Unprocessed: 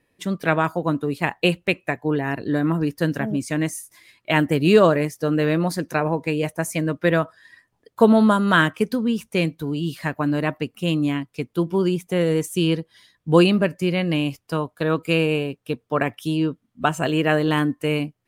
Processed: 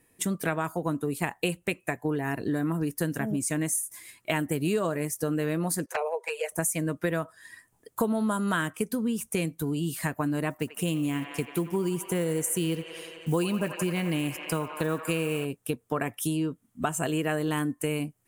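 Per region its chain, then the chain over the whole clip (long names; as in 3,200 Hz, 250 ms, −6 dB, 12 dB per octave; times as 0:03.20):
0:05.86–0:06.52: Butterworth high-pass 410 Hz 96 dB per octave + high-shelf EQ 7,800 Hz −11 dB + flanger swept by the level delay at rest 7.5 ms, full sweep at −20 dBFS
0:10.50–0:15.45: one scale factor per block 7 bits + delay with a band-pass on its return 87 ms, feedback 81%, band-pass 1,400 Hz, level −9.5 dB
whole clip: high shelf with overshoot 6,100 Hz +10.5 dB, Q 1.5; notch filter 560 Hz, Q 12; downward compressor 4 to 1, threshold −28 dBFS; level +1.5 dB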